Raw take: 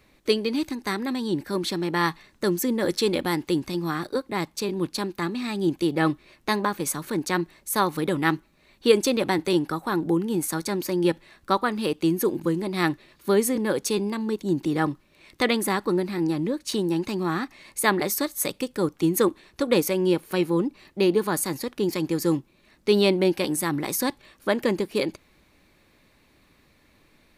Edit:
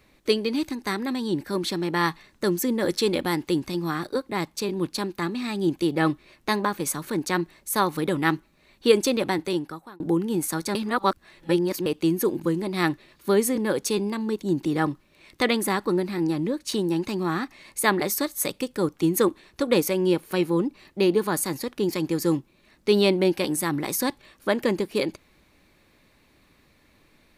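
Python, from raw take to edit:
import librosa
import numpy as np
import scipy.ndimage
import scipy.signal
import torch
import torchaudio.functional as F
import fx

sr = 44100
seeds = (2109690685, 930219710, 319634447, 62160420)

y = fx.edit(x, sr, fx.fade_out_span(start_s=8.93, length_s=1.07, curve='qsin'),
    fx.reverse_span(start_s=10.75, length_s=1.11), tone=tone)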